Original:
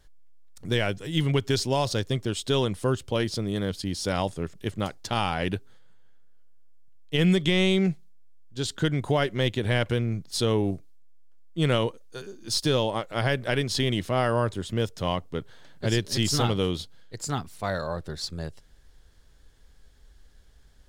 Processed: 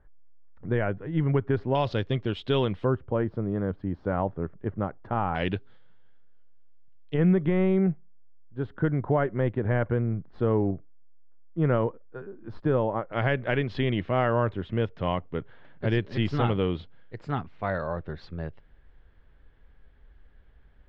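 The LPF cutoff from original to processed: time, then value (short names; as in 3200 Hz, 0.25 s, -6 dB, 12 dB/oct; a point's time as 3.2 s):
LPF 24 dB/oct
1700 Hz
from 1.75 s 3100 Hz
from 2.85 s 1500 Hz
from 5.35 s 3600 Hz
from 7.14 s 1600 Hz
from 13.13 s 2600 Hz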